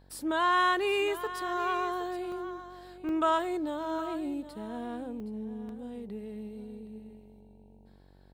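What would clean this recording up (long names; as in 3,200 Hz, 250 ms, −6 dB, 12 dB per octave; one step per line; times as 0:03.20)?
hum removal 47 Hz, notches 20
repair the gap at 0:02.32/0:03.09/0:05.20/0:05.69, 1.5 ms
echo removal 769 ms −13.5 dB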